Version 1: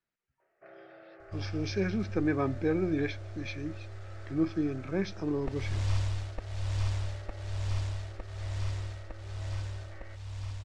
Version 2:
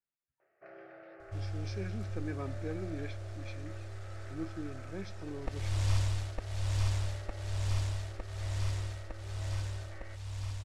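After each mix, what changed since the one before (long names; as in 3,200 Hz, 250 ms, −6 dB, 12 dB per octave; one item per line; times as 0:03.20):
speech −11.5 dB
master: remove high-frequency loss of the air 52 metres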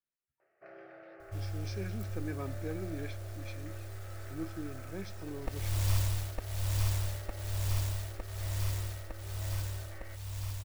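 master: remove Bessel low-pass filter 6,400 Hz, order 4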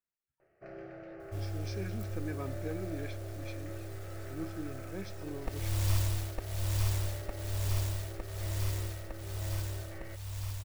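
first sound: remove resonant band-pass 1,400 Hz, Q 0.61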